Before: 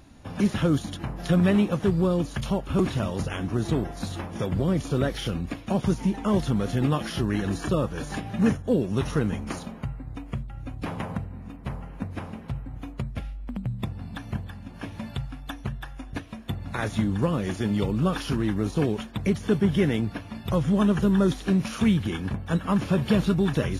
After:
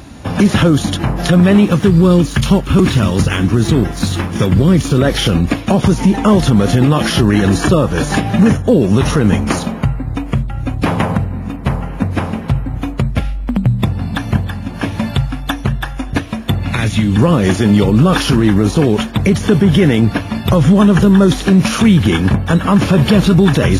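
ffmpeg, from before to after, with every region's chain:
-filter_complex "[0:a]asettb=1/sr,asplit=3[s0][s1][s2];[s0]atrim=end=1.654[s3];[s1]atrim=start=1.65:end=4.98,asetpts=PTS-STARTPTS,afade=t=in:d=0.004:c=qsin,afade=t=out:st=3.326:d=0.004:c=qsin,equalizer=f=670:t=o:w=1.1:g=-8,aeval=exprs='sgn(val(0))*max(abs(val(0))-0.002,0)':c=same[s4];[s2]atrim=start=4.976[s5];[s3][s4]acrossfade=d=0.004:c1=hsin:c2=qsin[s6];[s6][s5]acrossfade=d=0.004:c1=qsin:c2=hsin,asettb=1/sr,asplit=3[s7][s8][s9];[s7]atrim=end=16.634[s10];[s8]atrim=start=16.63:end=17.17,asetpts=PTS-STARTPTS,afade=t=in:d=0.004:c=qsin,afade=t=out:st=0.536:d=0.004:c=qsin,equalizer=f=2500:t=o:w=0.91:g=9,acrossover=split=260|2900[s11][s12][s13];[s11]acompressor=threshold=0.0398:ratio=4[s14];[s12]acompressor=threshold=0.00891:ratio=4[s15];[s13]acompressor=threshold=0.00708:ratio=4[s16];[s14][s15][s16]amix=inputs=3:normalize=0[s17];[s9]atrim=start=17.166[s18];[s10][s17]acrossfade=d=0.004:c1=hsin:c2=qsin[s19];[s19][s18]acrossfade=d=0.004:c1=qsin:c2=hsin,highpass=45,alimiter=level_in=8.41:limit=0.891:release=50:level=0:latency=1,volume=0.891"

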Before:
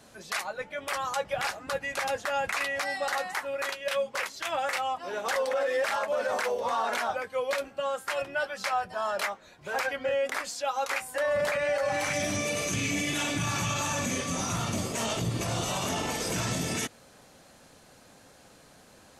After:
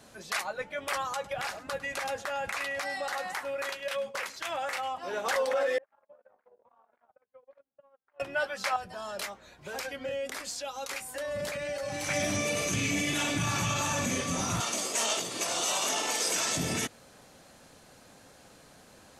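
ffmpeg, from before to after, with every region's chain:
-filter_complex "[0:a]asettb=1/sr,asplit=3[s0][s1][s2];[s0]atrim=end=1.024[s3];[s1]atrim=start=1.02:end=5.03,asetpts=PTS-STARTPTS,afade=t=in:d=0.004:c=qsin,afade=t=out:st=4.006:d=0.004:c=qsin,agate=range=0.0224:threshold=0.00794:ratio=3:release=100:detection=peak,acompressor=threshold=0.0282:ratio=2.5:attack=3.2:release=140:knee=1:detection=peak,aecho=1:1:103:0.133,atrim=end_sample=176841[s4];[s2]atrim=start=5.026[s5];[s3][s4]acrossfade=d=0.004:c1=hsin:c2=qsin[s6];[s6][s5]acrossfade=d=0.004:c1=qsin:c2=hsin,asettb=1/sr,asplit=3[s7][s8][s9];[s7]atrim=end=5.784[s10];[s8]atrim=start=5.78:end=8.2,asetpts=PTS-STARTPTS,afade=t=in:d=0.004:c=qsin,afade=t=out:st=2.416:d=0.004:c=qsin,lowpass=1300,acompressor=threshold=0.00891:ratio=12:attack=3.2:release=140:knee=1:detection=peak,agate=range=0.00708:threshold=0.00794:ratio=16:release=100:detection=peak[s11];[s9]atrim=start=8.196[s12];[s10][s11]acrossfade=d=0.004:c1=hsin:c2=qsin[s13];[s13][s12]acrossfade=d=0.004:c1=qsin:c2=hsin,asettb=1/sr,asplit=3[s14][s15][s16];[s14]atrim=end=8.764[s17];[s15]atrim=start=8.76:end=12.09,asetpts=PTS-STARTPTS,afade=t=in:d=0.004:c=qsin,afade=t=out:st=3.326:d=0.004:c=qsin,acrossover=split=420|3000[s18][s19][s20];[s19]acompressor=threshold=0.00631:ratio=2.5:attack=3.2:release=140:knee=2.83:detection=peak[s21];[s18][s21][s20]amix=inputs=3:normalize=0,aeval=exprs='val(0)+0.000447*(sin(2*PI*60*n/s)+sin(2*PI*2*60*n/s)/2+sin(2*PI*3*60*n/s)/3+sin(2*PI*4*60*n/s)/4+sin(2*PI*5*60*n/s)/5)':c=same[s22];[s16]atrim=start=12.086[s23];[s17][s22]acrossfade=d=0.004:c1=hsin:c2=qsin[s24];[s24][s23]acrossfade=d=0.004:c1=qsin:c2=hsin,asettb=1/sr,asplit=3[s25][s26][s27];[s25]atrim=end=14.604[s28];[s26]atrim=start=14.6:end=16.57,asetpts=PTS-STARTPTS,afade=t=in:d=0.004:c=qsin,afade=t=out:st=1.966:d=0.004:c=qsin,highpass=290,lowpass=7500,aemphasis=mode=production:type=bsi[s29];[s27]atrim=start=16.566[s30];[s28][s29]acrossfade=d=0.004:c1=hsin:c2=qsin[s31];[s31][s30]acrossfade=d=0.004:c1=qsin:c2=hsin"

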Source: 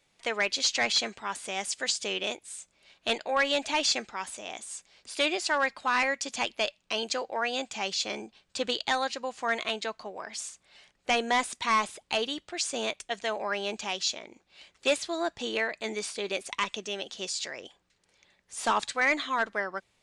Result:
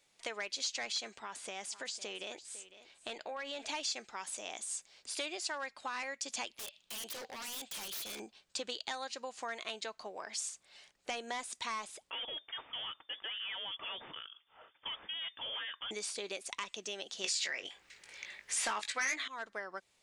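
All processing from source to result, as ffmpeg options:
-filter_complex "[0:a]asettb=1/sr,asplit=3[s0][s1][s2];[s0]atrim=end=1.194[s3];[s1]atrim=start=1.19:end=3.69,asetpts=PTS-STARTPTS,afade=t=in:d=0.004:c=qsin,afade=t=out:st=2.496:d=0.004:c=qsin,acompressor=threshold=0.02:ratio=3:attack=3.2:release=140:knee=1:detection=peak,lowpass=f=4000:p=1,aecho=1:1:503:0.15,atrim=end_sample=110250[s4];[s2]atrim=start=3.686[s5];[s3][s4]acrossfade=d=0.004:c1=hsin:c2=qsin[s6];[s6][s5]acrossfade=d=0.004:c1=qsin:c2=hsin,asettb=1/sr,asplit=3[s7][s8][s9];[s7]atrim=end=6.584[s10];[s8]atrim=start=6.58:end=8.2,asetpts=PTS-STARTPTS,afade=t=in:d=0.004:c=qsin,afade=t=out:st=1.616:d=0.004:c=qsin,equalizer=f=3400:t=o:w=0.77:g=12,acompressor=threshold=0.0251:ratio=3:attack=3.2:release=140:knee=1:detection=peak,aeval=exprs='0.015*(abs(mod(val(0)/0.015+3,4)-2)-1)':c=same[s11];[s9]atrim=start=8.196[s12];[s10][s11]acrossfade=d=0.004:c1=hsin:c2=qsin[s13];[s13][s12]acrossfade=d=0.004:c1=qsin:c2=hsin,asettb=1/sr,asplit=3[s14][s15][s16];[s14]atrim=end=12.104[s17];[s15]atrim=start=12.1:end=15.91,asetpts=PTS-STARTPTS,afade=t=in:d=0.004:c=qsin,afade=t=out:st=3.806:d=0.004:c=qsin,volume=47.3,asoftclip=hard,volume=0.0211,lowpass=f=3100:t=q:w=0.5098,lowpass=f=3100:t=q:w=0.6013,lowpass=f=3100:t=q:w=0.9,lowpass=f=3100:t=q:w=2.563,afreqshift=-3600[s18];[s16]atrim=start=15.906[s19];[s17][s18]acrossfade=d=0.004:c1=hsin:c2=qsin[s20];[s20][s19]acrossfade=d=0.004:c1=qsin:c2=hsin,asettb=1/sr,asplit=3[s21][s22][s23];[s21]atrim=end=17.244[s24];[s22]atrim=start=17.24:end=19.28,asetpts=PTS-STARTPTS,afade=t=in:d=0.004:c=qsin,afade=t=out:st=2.036:d=0.004:c=qsin,equalizer=f=2100:t=o:w=1.2:g=12,aeval=exprs='0.531*sin(PI/2*2*val(0)/0.531)':c=same,asplit=2[s25][s26];[s26]adelay=19,volume=0.473[s27];[s25][s27]amix=inputs=2:normalize=0,atrim=end_sample=89964[s28];[s23]atrim=start=19.276[s29];[s24][s28]acrossfade=d=0.004:c1=hsin:c2=qsin[s30];[s30][s29]acrossfade=d=0.004:c1=qsin:c2=hsin,acompressor=threshold=0.0178:ratio=4,bass=f=250:g=-6,treble=f=4000:g=5,volume=0.668"

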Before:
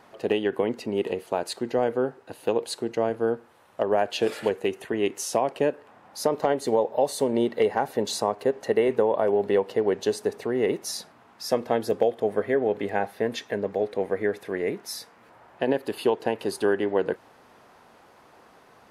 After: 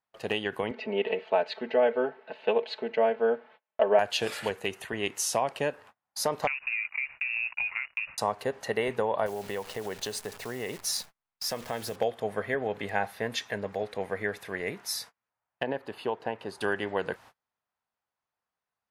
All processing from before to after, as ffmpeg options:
-filter_complex "[0:a]asettb=1/sr,asplit=3[s0][s1][s2];[s0]atrim=end=0.714[s3];[s1]atrim=start=0.71:end=3.99,asetpts=PTS-STARTPTS,afade=t=in:d=0.004:c=qsin,afade=t=out:st=3.276:d=0.004:c=qsin,highpass=240,equalizer=f=400:t=q:w=4:g=3,equalizer=f=570:t=q:w=4:g=8,equalizer=f=1200:t=q:w=4:g=-5,equalizer=f=2300:t=q:w=4:g=3,lowpass=f=3300:w=0.5412,lowpass=f=3300:w=1.3066,aecho=1:1:4.6:0.83,atrim=end_sample=144648[s4];[s2]atrim=start=3.986[s5];[s3][s4]acrossfade=d=0.004:c1=hsin:c2=qsin[s6];[s6][s5]acrossfade=d=0.004:c1=qsin:c2=hsin,asettb=1/sr,asplit=3[s7][s8][s9];[s7]atrim=end=6.474[s10];[s8]atrim=start=6.47:end=8.18,asetpts=PTS-STARTPTS,afade=t=in:d=0.004:c=qsin,afade=t=out:st=1.706:d=0.004:c=qsin,aeval=exprs='sgn(val(0))*max(abs(val(0))-0.0106,0)':c=same,acompressor=threshold=0.0398:ratio=12:attack=3.2:release=140:knee=1:detection=peak,lowpass=f=2500:t=q:w=0.5098,lowpass=f=2500:t=q:w=0.6013,lowpass=f=2500:t=q:w=0.9,lowpass=f=2500:t=q:w=2.563,afreqshift=-2900[s11];[s9]atrim=start=8.176[s12];[s10][s11]acrossfade=d=0.004:c1=hsin:c2=qsin[s13];[s13][s12]acrossfade=d=0.004:c1=qsin:c2=hsin,asettb=1/sr,asplit=3[s14][s15][s16];[s14]atrim=end=9.264[s17];[s15]atrim=start=9.26:end=11.96,asetpts=PTS-STARTPTS,afade=t=in:d=0.004:c=qsin,afade=t=out:st=2.696:d=0.004:c=qsin,acrusher=bits=8:dc=4:mix=0:aa=0.000001,acompressor=threshold=0.0447:ratio=2:attack=3.2:release=140:knee=1:detection=peak[s18];[s16]atrim=start=11.956[s19];[s17][s18]acrossfade=d=0.004:c1=hsin:c2=qsin[s20];[s20][s19]acrossfade=d=0.004:c1=qsin:c2=hsin,asettb=1/sr,asplit=3[s21][s22][s23];[s21]atrim=end=15.634[s24];[s22]atrim=start=15.63:end=16.61,asetpts=PTS-STARTPTS,afade=t=in:d=0.004:c=qsin,afade=t=out:st=0.976:d=0.004:c=qsin,lowpass=f=1100:p=1,lowshelf=f=150:g=-6.5[s25];[s23]atrim=start=16.606[s26];[s24][s25]acrossfade=d=0.004:c1=hsin:c2=qsin[s27];[s27][s26]acrossfade=d=0.004:c1=qsin:c2=hsin,agate=range=0.0178:threshold=0.00562:ratio=16:detection=peak,equalizer=f=340:t=o:w=1.9:g=-12.5,volume=1.33"

